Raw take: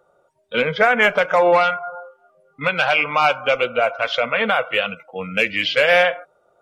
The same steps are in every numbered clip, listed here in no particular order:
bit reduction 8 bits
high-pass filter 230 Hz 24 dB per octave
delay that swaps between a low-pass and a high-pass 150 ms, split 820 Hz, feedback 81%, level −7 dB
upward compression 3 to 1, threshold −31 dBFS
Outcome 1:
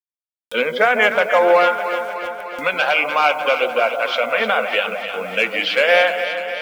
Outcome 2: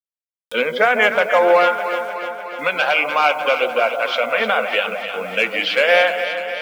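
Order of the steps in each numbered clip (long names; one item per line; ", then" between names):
high-pass filter, then bit reduction, then upward compression, then delay that swaps between a low-pass and a high-pass
high-pass filter, then bit reduction, then delay that swaps between a low-pass and a high-pass, then upward compression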